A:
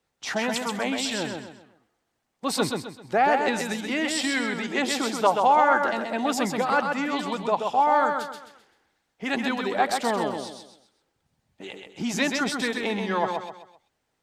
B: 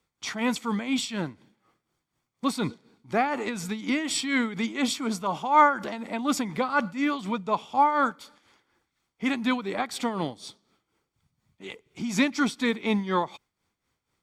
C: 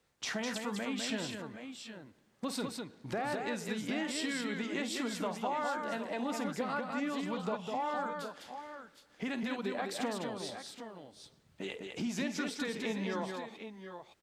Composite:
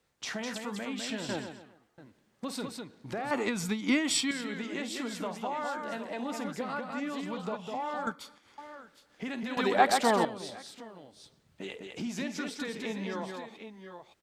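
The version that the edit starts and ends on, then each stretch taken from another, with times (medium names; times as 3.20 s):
C
1.29–1.98 s: from A
3.31–4.31 s: from B
8.07–8.58 s: from B
9.57–10.25 s: from A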